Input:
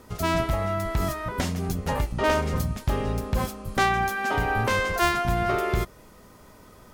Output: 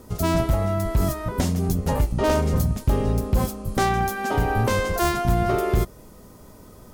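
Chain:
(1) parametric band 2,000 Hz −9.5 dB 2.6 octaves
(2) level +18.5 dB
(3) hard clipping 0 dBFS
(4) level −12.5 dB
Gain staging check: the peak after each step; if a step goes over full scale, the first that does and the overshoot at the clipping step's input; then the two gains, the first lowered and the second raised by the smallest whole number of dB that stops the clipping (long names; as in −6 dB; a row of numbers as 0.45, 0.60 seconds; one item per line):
−13.5, +5.0, 0.0, −12.5 dBFS
step 2, 5.0 dB
step 2 +13.5 dB, step 4 −7.5 dB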